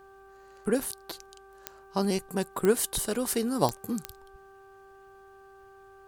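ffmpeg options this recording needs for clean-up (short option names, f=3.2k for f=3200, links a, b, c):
-af "adeclick=t=4,bandreject=f=390:t=h:w=4,bandreject=f=780:t=h:w=4,bandreject=f=1.17k:t=h:w=4,bandreject=f=1.56k:t=h:w=4"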